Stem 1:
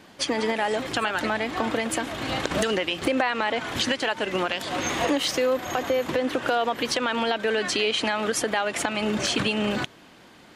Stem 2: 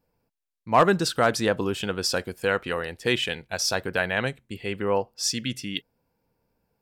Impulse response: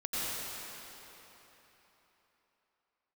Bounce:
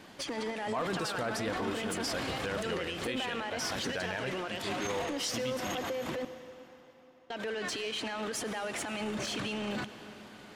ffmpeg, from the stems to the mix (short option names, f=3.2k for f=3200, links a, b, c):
-filter_complex "[0:a]alimiter=limit=-23.5dB:level=0:latency=1:release=64,asoftclip=type=tanh:threshold=-26.5dB,volume=-2.5dB,asplit=3[a][b][c];[a]atrim=end=6.25,asetpts=PTS-STARTPTS,afade=t=out:st=6.246:d=0.004:c=hsin[d];[b]atrim=start=6.25:end=7.3,asetpts=PTS-STARTPTS,volume=0[e];[c]atrim=start=7.3,asetpts=PTS-STARTPTS,afade=t=in:d=0.004:c=hsin[f];[d][e][f]concat=n=3:v=0:a=1,asplit=2[g][h];[h]volume=-18dB[i];[1:a]aphaser=in_gain=1:out_gain=1:delay=4.9:decay=0.28:speed=0.76:type=sinusoidal,volume=-10dB,asplit=2[j][k];[k]volume=-18.5dB[l];[2:a]atrim=start_sample=2205[m];[i][l]amix=inputs=2:normalize=0[n];[n][m]afir=irnorm=-1:irlink=0[o];[g][j][o]amix=inputs=3:normalize=0,alimiter=level_in=1dB:limit=-24dB:level=0:latency=1:release=12,volume=-1dB"